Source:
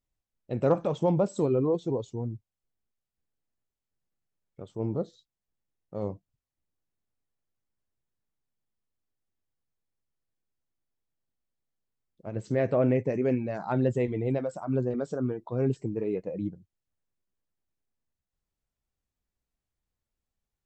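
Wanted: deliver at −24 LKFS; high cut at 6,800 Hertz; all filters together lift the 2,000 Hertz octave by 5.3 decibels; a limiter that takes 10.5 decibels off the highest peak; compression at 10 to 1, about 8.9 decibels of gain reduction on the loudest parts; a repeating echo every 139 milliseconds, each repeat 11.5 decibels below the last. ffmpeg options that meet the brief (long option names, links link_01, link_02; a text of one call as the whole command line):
ffmpeg -i in.wav -af "lowpass=6800,equalizer=frequency=2000:width_type=o:gain=6.5,acompressor=threshold=-28dB:ratio=10,alimiter=level_in=5dB:limit=-24dB:level=0:latency=1,volume=-5dB,aecho=1:1:139|278|417:0.266|0.0718|0.0194,volume=15dB" out.wav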